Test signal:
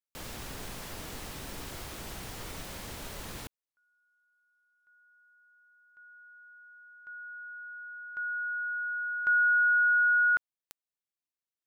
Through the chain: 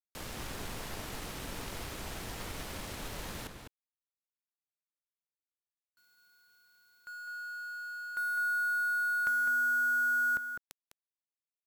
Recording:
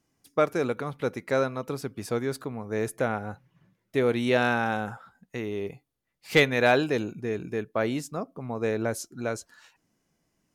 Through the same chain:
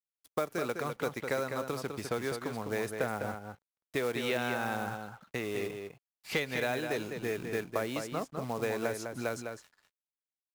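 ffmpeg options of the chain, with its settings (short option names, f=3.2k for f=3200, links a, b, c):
-filter_complex "[0:a]aresample=32000,aresample=44100,acrusher=bits=5:mode=log:mix=0:aa=0.000001,aeval=exprs='sgn(val(0))*max(abs(val(0))-0.00224,0)':c=same,acrossover=split=510|4500[a][b][c];[a]acompressor=threshold=-39dB:ratio=8[d];[b]acompressor=threshold=-34dB:ratio=8[e];[c]acompressor=threshold=-49dB:ratio=5[f];[d][e][f]amix=inputs=3:normalize=0,asplit=2[g][h];[h]adelay=204.1,volume=-6dB,highshelf=f=4k:g=-4.59[i];[g][i]amix=inputs=2:normalize=0,volume=2dB"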